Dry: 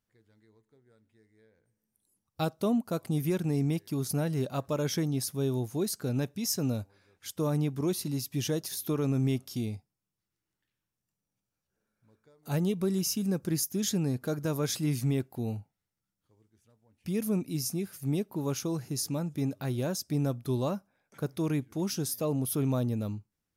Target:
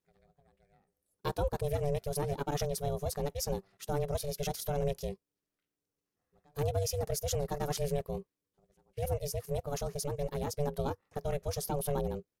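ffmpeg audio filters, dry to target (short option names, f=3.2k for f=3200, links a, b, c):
-af "aeval=exprs='val(0)*sin(2*PI*290*n/s)':c=same,atempo=1.9"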